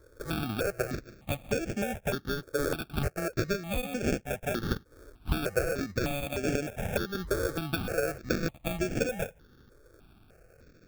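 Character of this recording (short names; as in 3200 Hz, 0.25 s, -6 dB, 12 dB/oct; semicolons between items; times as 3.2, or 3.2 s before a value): aliases and images of a low sample rate 1000 Hz, jitter 0%; notches that jump at a steady rate 3.3 Hz 750–3900 Hz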